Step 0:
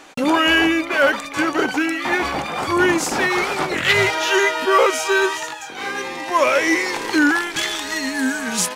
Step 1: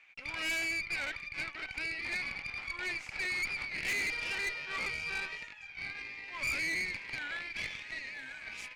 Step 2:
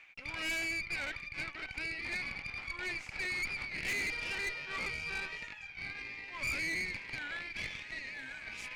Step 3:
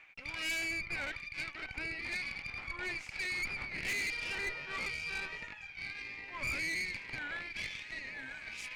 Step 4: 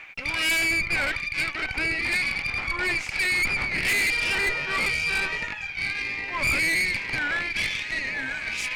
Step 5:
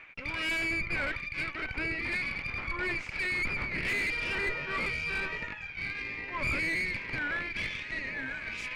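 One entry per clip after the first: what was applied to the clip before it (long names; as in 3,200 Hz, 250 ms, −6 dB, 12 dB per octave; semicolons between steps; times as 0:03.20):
resonant band-pass 2,300 Hz, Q 9.1; tube saturation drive 30 dB, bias 0.75
low-shelf EQ 360 Hz +5 dB; reversed playback; upward compression, threshold −37 dBFS; reversed playback; level −2 dB
two-band tremolo in antiphase 1.1 Hz, depth 50%, crossover 2,100 Hz; level +2 dB
sine wavefolder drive 4 dB, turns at −26.5 dBFS; level +7 dB
low-pass filter 1,600 Hz 6 dB per octave; parametric band 780 Hz −7 dB 0.32 octaves; level −3 dB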